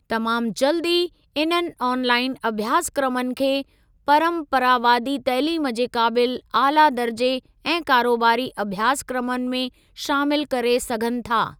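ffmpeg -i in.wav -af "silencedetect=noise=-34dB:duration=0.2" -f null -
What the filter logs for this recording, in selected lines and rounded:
silence_start: 1.07
silence_end: 1.36 | silence_duration: 0.29
silence_start: 3.62
silence_end: 4.08 | silence_duration: 0.46
silence_start: 7.39
silence_end: 7.65 | silence_duration: 0.26
silence_start: 9.68
silence_end: 9.98 | silence_duration: 0.30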